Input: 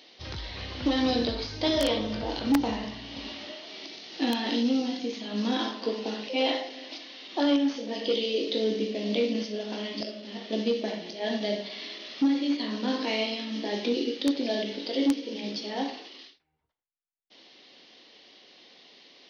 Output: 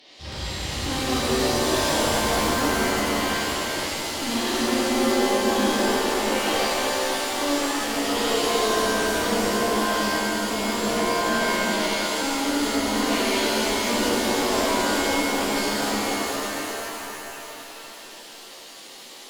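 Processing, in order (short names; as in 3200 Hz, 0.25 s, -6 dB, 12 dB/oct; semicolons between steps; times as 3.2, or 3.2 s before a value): tube stage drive 33 dB, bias 0.55; shimmer reverb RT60 3.6 s, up +7 st, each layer -2 dB, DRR -9 dB; gain +2 dB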